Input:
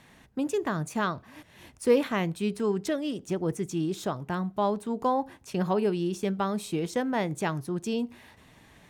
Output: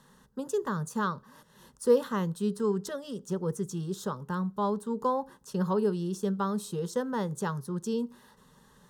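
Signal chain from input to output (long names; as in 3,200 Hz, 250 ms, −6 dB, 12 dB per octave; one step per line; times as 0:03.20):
phaser with its sweep stopped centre 460 Hz, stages 8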